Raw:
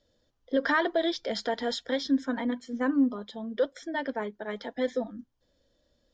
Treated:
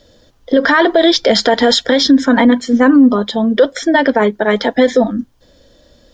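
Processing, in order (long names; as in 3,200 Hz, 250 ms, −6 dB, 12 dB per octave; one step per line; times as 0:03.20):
boost into a limiter +23.5 dB
level −1 dB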